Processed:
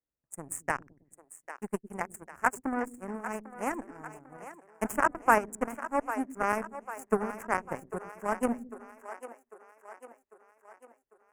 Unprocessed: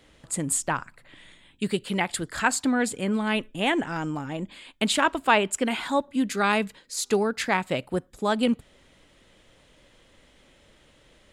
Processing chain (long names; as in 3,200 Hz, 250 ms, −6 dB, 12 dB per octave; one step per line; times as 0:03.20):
0:00.68–0:01.69: de-essing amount 85%
0:00.46–0:01.13: gain on a spectral selection 1,600–3,400 Hz +10 dB
harmonic generator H 7 −17 dB, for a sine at −5.5 dBFS
Butterworth band-reject 3,800 Hz, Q 0.59
on a send: echo with a time of its own for lows and highs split 350 Hz, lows 107 ms, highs 798 ms, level −12.5 dB